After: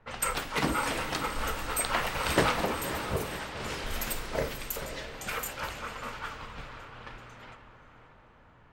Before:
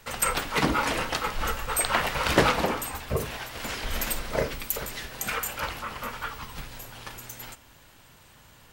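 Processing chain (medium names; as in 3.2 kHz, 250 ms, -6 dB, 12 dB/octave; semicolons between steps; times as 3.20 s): echo that smears into a reverb 558 ms, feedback 53%, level -9 dB; flange 0.98 Hz, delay 8.2 ms, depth 7.7 ms, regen -81%; level-controlled noise filter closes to 1.3 kHz, open at -30 dBFS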